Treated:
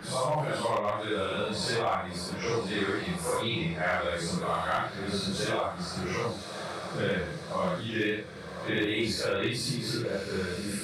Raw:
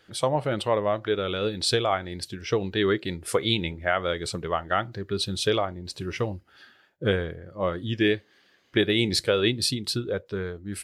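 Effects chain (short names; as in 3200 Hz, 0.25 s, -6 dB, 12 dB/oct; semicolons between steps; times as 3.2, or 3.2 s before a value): phase scrambler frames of 0.2 s; thirty-one-band EQ 100 Hz -10 dB, 160 Hz +6 dB, 250 Hz -8 dB, 400 Hz -7 dB, 1000 Hz +5 dB, 3150 Hz -9 dB; hard clip -18 dBFS, distortion -24 dB; on a send: diffused feedback echo 1.132 s, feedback 50%, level -16 dB; on the sum: three-band squash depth 70%; gain -2.5 dB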